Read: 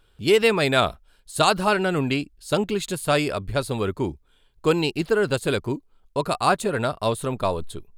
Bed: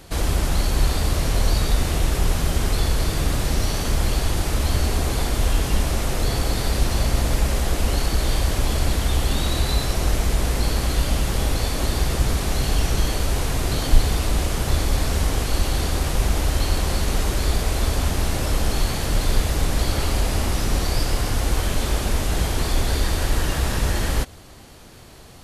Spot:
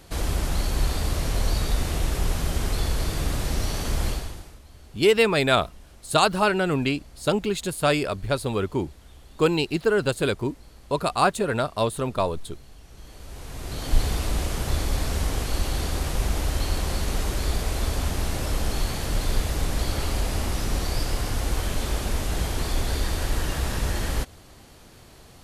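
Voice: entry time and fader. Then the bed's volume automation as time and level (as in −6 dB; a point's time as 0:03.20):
4.75 s, −0.5 dB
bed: 0:04.09 −4.5 dB
0:04.62 −28 dB
0:12.83 −28 dB
0:14.01 −4.5 dB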